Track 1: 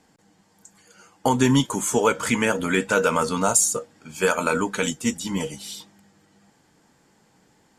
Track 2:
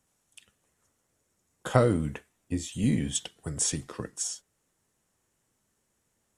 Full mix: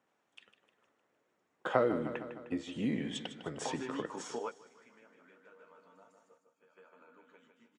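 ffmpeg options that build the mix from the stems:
-filter_complex "[0:a]acompressor=threshold=0.0891:ratio=6,flanger=delay=9.8:depth=8.3:regen=-45:speed=0.3:shape=sinusoidal,adelay=2400,volume=0.447,asplit=2[s0][s1];[s1]volume=0.0668[s2];[1:a]volume=1.41,asplit=3[s3][s4][s5];[s4]volume=0.224[s6];[s5]apad=whole_len=449034[s7];[s0][s7]sidechaingate=range=0.0251:threshold=0.00282:ratio=16:detection=peak[s8];[s2][s6]amix=inputs=2:normalize=0,aecho=0:1:153|306|459|612|765|918|1071:1|0.5|0.25|0.125|0.0625|0.0312|0.0156[s9];[s8][s3][s9]amix=inputs=3:normalize=0,highpass=300,lowpass=2400,acompressor=threshold=0.0141:ratio=1.5"

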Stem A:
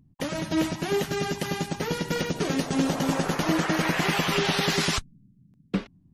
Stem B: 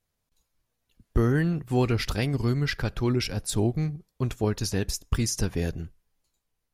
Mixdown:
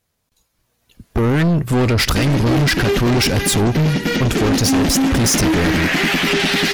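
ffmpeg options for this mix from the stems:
-filter_complex "[0:a]equalizer=f=125:t=o:w=1:g=-9,equalizer=f=250:t=o:w=1:g=8,equalizer=f=500:t=o:w=1:g=-4,equalizer=f=1000:t=o:w=1:g=-9,equalizer=f=2000:t=o:w=1:g=4,equalizer=f=8000:t=o:w=1:g=-8,adelay=1950,volume=1.41[s0];[1:a]highpass=f=57:p=1,alimiter=limit=0.126:level=0:latency=1:release=34,acontrast=84,volume=1.41[s1];[s0][s1]amix=inputs=2:normalize=0,asoftclip=type=tanh:threshold=0.075,dynaudnorm=f=240:g=7:m=3.16"

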